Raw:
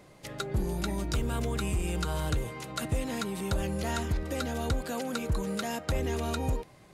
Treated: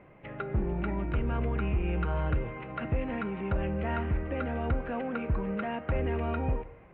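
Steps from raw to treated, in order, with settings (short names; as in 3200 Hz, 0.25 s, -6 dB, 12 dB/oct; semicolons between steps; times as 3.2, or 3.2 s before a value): steep low-pass 2700 Hz 48 dB/oct; reverb RT60 1.1 s, pre-delay 7 ms, DRR 12.5 dB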